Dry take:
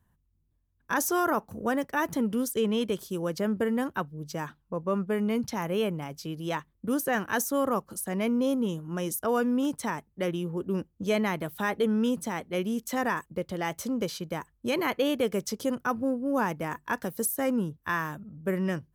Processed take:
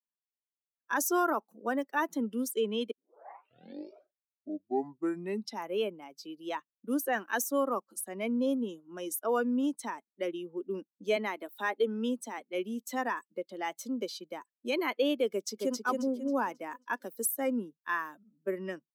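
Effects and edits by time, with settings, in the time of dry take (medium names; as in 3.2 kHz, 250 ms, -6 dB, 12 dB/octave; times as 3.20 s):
2.91 s: tape start 2.74 s
11.16–12.38 s: high-pass 200 Hz 24 dB/octave
15.29–15.77 s: echo throw 270 ms, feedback 45%, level -2 dB
whole clip: expander on every frequency bin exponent 1.5; steep high-pass 240 Hz 36 dB/octave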